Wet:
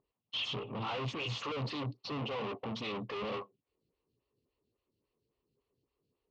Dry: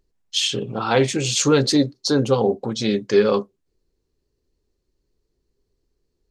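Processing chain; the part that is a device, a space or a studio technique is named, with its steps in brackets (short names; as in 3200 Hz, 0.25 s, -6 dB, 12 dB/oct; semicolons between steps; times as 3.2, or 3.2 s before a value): vibe pedal into a guitar amplifier (photocell phaser 3.6 Hz; tube stage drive 36 dB, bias 0.45; speaker cabinet 95–4200 Hz, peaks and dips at 120 Hz +7 dB, 360 Hz -5 dB, 1100 Hz +7 dB, 1600 Hz -9 dB, 2800 Hz +8 dB)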